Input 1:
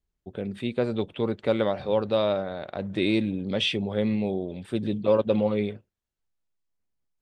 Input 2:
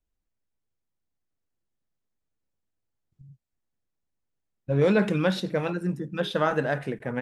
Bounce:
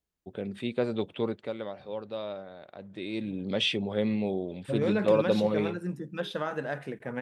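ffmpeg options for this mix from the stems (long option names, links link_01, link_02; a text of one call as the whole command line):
ffmpeg -i stem1.wav -i stem2.wav -filter_complex "[0:a]volume=8.5dB,afade=type=out:start_time=1.23:duration=0.29:silence=0.316228,afade=type=in:start_time=3.1:duration=0.35:silence=0.298538[link_01];[1:a]alimiter=limit=-16dB:level=0:latency=1:release=370,volume=-4dB[link_02];[link_01][link_02]amix=inputs=2:normalize=0,highpass=frequency=130:poles=1" out.wav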